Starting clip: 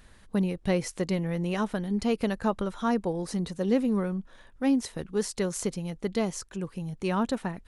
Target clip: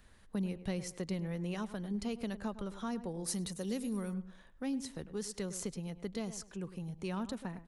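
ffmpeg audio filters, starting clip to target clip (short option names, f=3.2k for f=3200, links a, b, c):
-filter_complex "[0:a]asettb=1/sr,asplit=3[a][b][c];[a]atrim=end=3.244[d];[b]atrim=start=3.24:end=4.14,asetpts=PTS-STARTPTS,afade=t=in:d=0.004:c=qsin,afade=t=out:st=0.896:d=0.004:c=qsin,aemphasis=mode=production:type=75fm[e];[c]atrim=start=4.136[f];[d][e]acrossfade=d=0.004:c1=hsin:c2=qsin[g];[g][f]acrossfade=d=0.004:c1=qsin:c2=hsin,asplit=2[h][i];[i]adelay=103,lowpass=f=1.8k:p=1,volume=-14dB,asplit=2[j][k];[k]adelay=103,lowpass=f=1.8k:p=1,volume=0.24,asplit=2[l][m];[m]adelay=103,lowpass=f=1.8k:p=1,volume=0.24[n];[h][j][l][n]amix=inputs=4:normalize=0,acrossover=split=200|3000[o][p][q];[p]acompressor=threshold=-33dB:ratio=3[r];[o][r][q]amix=inputs=3:normalize=0,volume=-7dB"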